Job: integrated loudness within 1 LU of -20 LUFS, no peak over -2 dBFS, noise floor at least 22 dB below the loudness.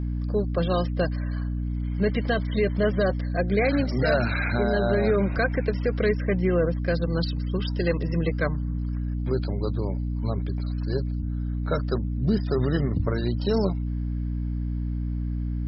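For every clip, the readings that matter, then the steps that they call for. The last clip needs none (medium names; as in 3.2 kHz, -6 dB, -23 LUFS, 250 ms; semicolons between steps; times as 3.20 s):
hum 60 Hz; highest harmonic 300 Hz; hum level -25 dBFS; loudness -26.0 LUFS; peak level -11.0 dBFS; loudness target -20.0 LUFS
-> hum notches 60/120/180/240/300 Hz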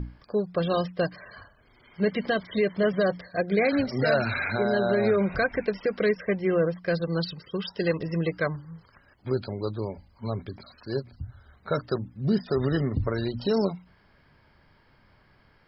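hum not found; loudness -27.0 LUFS; peak level -13.0 dBFS; loudness target -20.0 LUFS
-> trim +7 dB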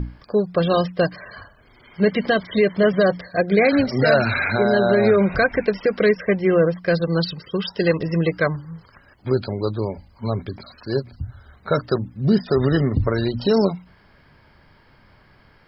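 loudness -20.0 LUFS; peak level -6.0 dBFS; noise floor -54 dBFS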